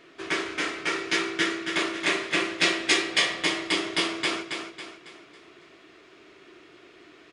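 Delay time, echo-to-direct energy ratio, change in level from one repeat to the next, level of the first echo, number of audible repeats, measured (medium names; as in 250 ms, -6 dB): 275 ms, -5.0 dB, -7.5 dB, -6.0 dB, 4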